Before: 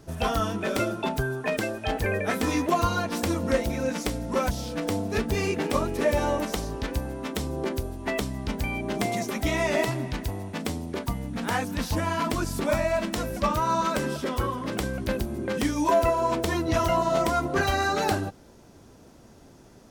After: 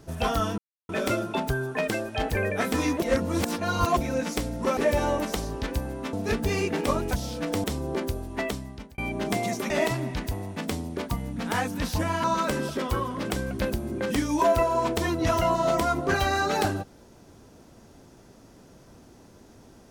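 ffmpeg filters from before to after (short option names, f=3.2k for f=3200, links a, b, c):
-filter_complex "[0:a]asplit=11[a][b][c][d][e][f][g][h][i][j][k];[a]atrim=end=0.58,asetpts=PTS-STARTPTS,afade=t=out:st=0.576:d=0.004:c=hsin,apad=pad_dur=0.31[l];[b]atrim=start=0.58:end=2.712,asetpts=PTS-STARTPTS,afade=t=in:d=0.004:c=hsin[m];[c]atrim=start=2.708:end=3.662,asetpts=PTS-STARTPTS,areverse[n];[d]atrim=start=3.658:end=4.462[o];[e]atrim=start=5.968:end=7.332[p];[f]atrim=start=4.988:end=5.972[q];[g]atrim=start=4.458:end=4.992[r];[h]atrim=start=7.328:end=8.67,asetpts=PTS-STARTPTS,afade=t=out:st=0.722:d=0.62[s];[i]atrim=start=8.67:end=9.392,asetpts=PTS-STARTPTS,afade=t=in:d=0.004:c=hsin[t];[j]atrim=start=9.668:end=12.212[u];[k]atrim=start=13.708[v];[l][m]concat=n=2:v=0:a=1[w];[w][n]acrossfade=d=0.004:c1=hsin:c2=hsin[x];[x][o]acrossfade=d=0.004:c1=hsin:c2=hsin[y];[y][p]acrossfade=d=0.004:c1=hsin:c2=hsin[z];[z][q]acrossfade=d=0.004:c1=hsin:c2=hsin[aa];[aa][r]acrossfade=d=0.004:c1=hsin:c2=hsin[ab];[s][t]concat=n=2:v=0:a=1[ac];[ab][ac]acrossfade=d=0.004:c1=hsin:c2=hsin[ad];[ad][u]acrossfade=d=0.004:c1=hsin:c2=hsin[ae];[ae][v]acrossfade=d=0.004:c1=hsin:c2=hsin"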